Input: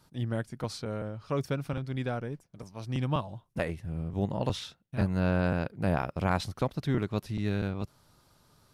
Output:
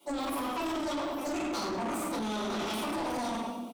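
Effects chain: bell 200 Hz +10.5 dB 0.27 oct; speed mistake 33 rpm record played at 78 rpm; HPF 110 Hz; fixed phaser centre 460 Hz, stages 6; feedback echo 93 ms, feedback 56%, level -16 dB; shoebox room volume 270 m³, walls mixed, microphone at 4.7 m; limiter -16.5 dBFS, peak gain reduction 10 dB; LPF 1600 Hz 6 dB/oct; tilt +3.5 dB/oct; soft clip -31.5 dBFS, distortion -10 dB; gain +1.5 dB

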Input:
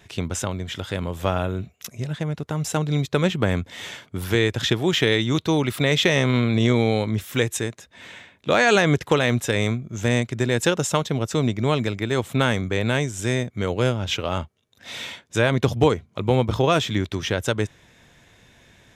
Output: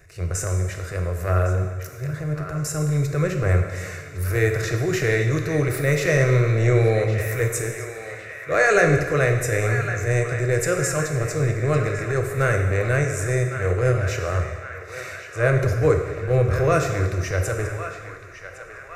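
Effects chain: low shelf 100 Hz +10.5 dB; transient shaper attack -11 dB, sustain +1 dB; fixed phaser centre 890 Hz, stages 6; on a send: narrowing echo 1.108 s, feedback 65%, band-pass 1700 Hz, level -8.5 dB; on the sum: plate-style reverb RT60 1.5 s, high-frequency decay 0.9×, DRR 3.5 dB; gain +2 dB

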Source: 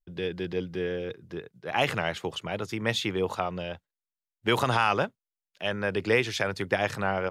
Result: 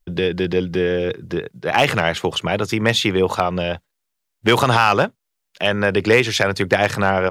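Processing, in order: in parallel at +2 dB: compressor 16:1, threshold -34 dBFS, peak gain reduction 17 dB; on the sum: hard clip -12.5 dBFS, distortion -23 dB; gain +8 dB

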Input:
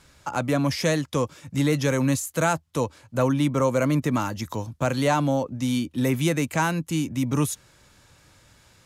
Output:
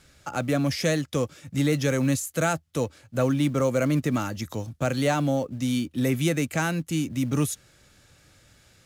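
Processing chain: bell 980 Hz -12 dB 0.26 oct; in parallel at -9.5 dB: short-mantissa float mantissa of 2-bit; on the sum: gain -3.5 dB

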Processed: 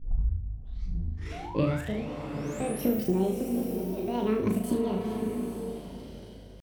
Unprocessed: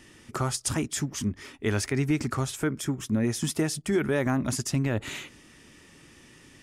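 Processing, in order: tape start at the beginning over 2.05 s; HPF 46 Hz 6 dB/oct; RIAA curve playback; compressor, threshold -23 dBFS, peak gain reduction 13 dB; painted sound rise, 1.34–3.1, 390–12000 Hz -42 dBFS; tremolo 0.66 Hz, depth 98%; pitch shift +9 st; hum 50 Hz, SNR 19 dB; flutter echo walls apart 6.4 m, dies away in 0.47 s; bloom reverb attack 0.87 s, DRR 5 dB

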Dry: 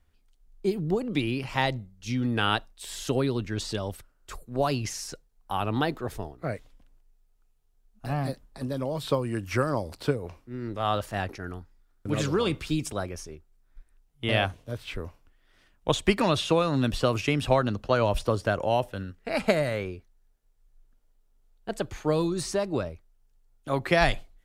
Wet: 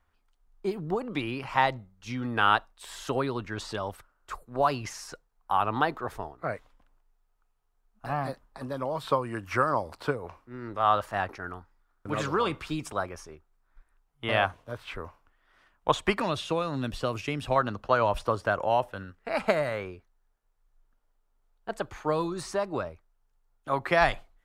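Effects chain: bell 1100 Hz +14 dB 1.8 oct, from 16.2 s +3.5 dB, from 17.56 s +11.5 dB; gain -7 dB

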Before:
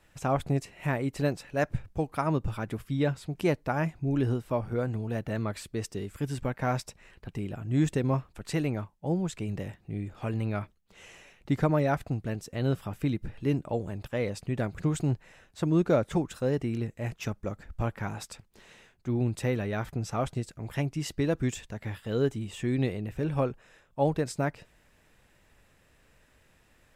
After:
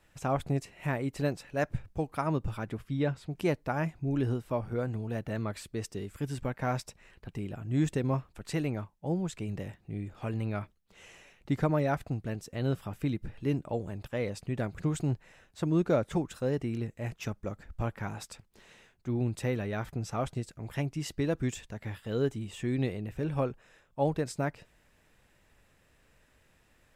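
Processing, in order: 2.69–3.31 high shelf 6700 Hz -9 dB; gain -2.5 dB

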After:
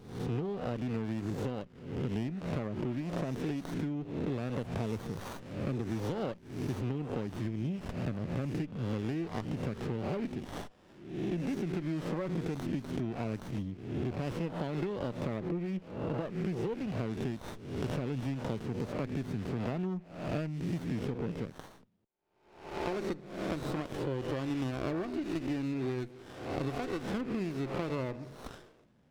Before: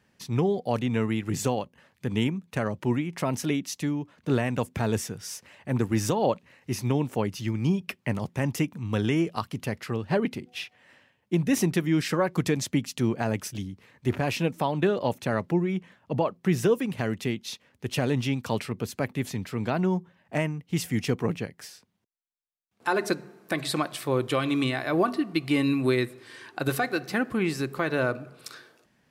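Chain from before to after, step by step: spectral swells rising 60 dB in 0.67 s; 4.38–6.81 high shelf 3500 Hz +8 dB; LPF 4500 Hz 12 dB/oct; bell 1100 Hz -7 dB 1.3 oct; compressor 10:1, threshold -31 dBFS, peak gain reduction 14 dB; running maximum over 17 samples

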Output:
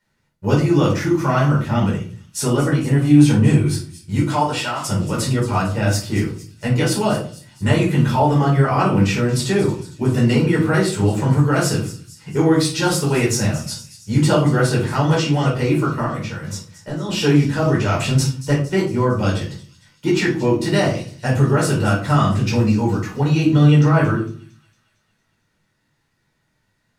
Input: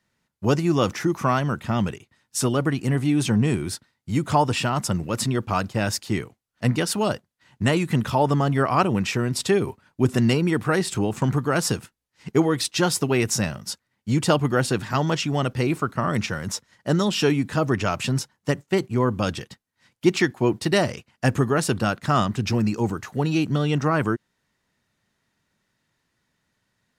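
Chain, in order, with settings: 4.18–4.86 HPF 410 Hz -> 1200 Hz 6 dB/oct; 17.87–18.54 transient shaper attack +2 dB, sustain +6 dB; in parallel at +2 dB: limiter -13 dBFS, peak gain reduction 7.5 dB; 16.05–17.09 on the sum: compressor 3:1, threshold -25 dBFS, peak gain reduction 11 dB; on a send: thin delay 0.228 s, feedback 56%, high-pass 4500 Hz, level -12.5 dB; on the sum: shoebox room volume 350 m³, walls furnished, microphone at 4.7 m; gain -11 dB

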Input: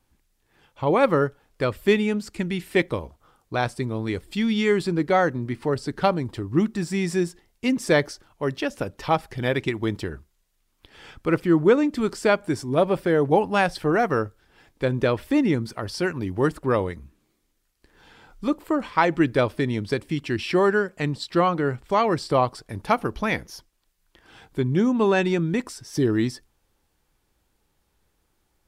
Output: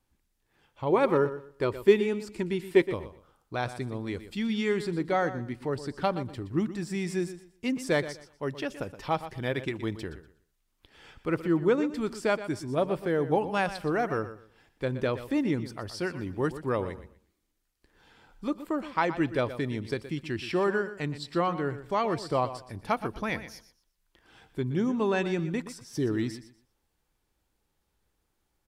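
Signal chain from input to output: 0.92–2.84 small resonant body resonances 380/950 Hz, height 10 dB; on a send: feedback echo 0.121 s, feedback 23%, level -13 dB; on the sum: gain -7 dB

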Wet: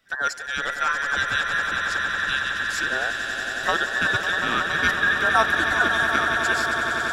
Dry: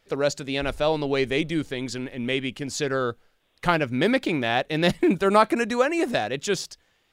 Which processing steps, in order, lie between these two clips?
band inversion scrambler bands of 2000 Hz; swelling echo 92 ms, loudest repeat 8, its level -10.5 dB; gain -2 dB

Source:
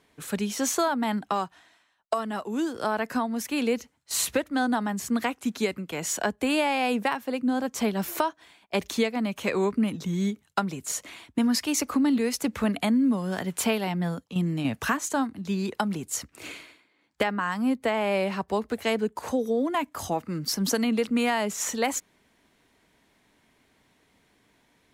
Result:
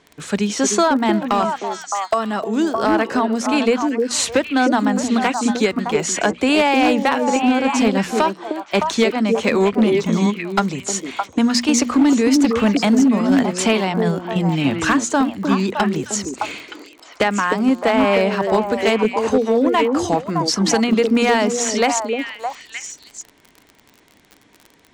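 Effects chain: LPF 7900 Hz 24 dB/oct; notches 60/120/180/240 Hz; on a send: delay with a stepping band-pass 0.307 s, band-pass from 350 Hz, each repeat 1.4 oct, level -0.5 dB; on the sum: crackle 38/s -38 dBFS; overloaded stage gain 17.5 dB; gain +9 dB

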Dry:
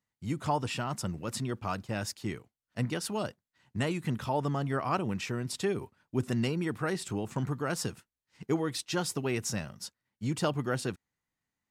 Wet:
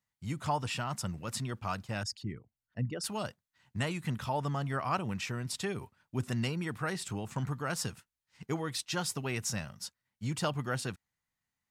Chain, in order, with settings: 2.03–3.04 formant sharpening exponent 2; bell 350 Hz -7.5 dB 1.4 oct

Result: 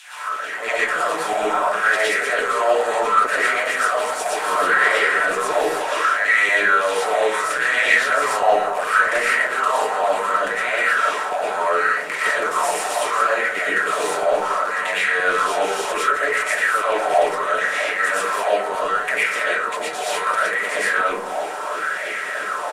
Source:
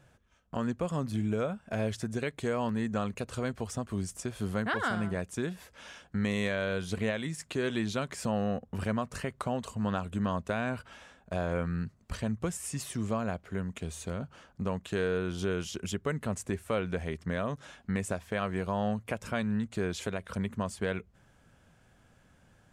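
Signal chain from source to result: per-bin compression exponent 0.4; HPF 120 Hz 24 dB/oct; high shelf 10000 Hz +5 dB; comb 6.7 ms, depth 49%; limiter -18 dBFS, peak gain reduction 9.5 dB; 18.13–20.5 negative-ratio compressor -31 dBFS, ratio -0.5; LFO high-pass saw down 3.1 Hz 370–3200 Hz; bands offset in time highs, lows 40 ms, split 1000 Hz; digital reverb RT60 0.61 s, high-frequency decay 0.3×, pre-delay 75 ms, DRR -7.5 dB; LFO bell 0.7 Hz 780–2100 Hz +17 dB; gain -3.5 dB

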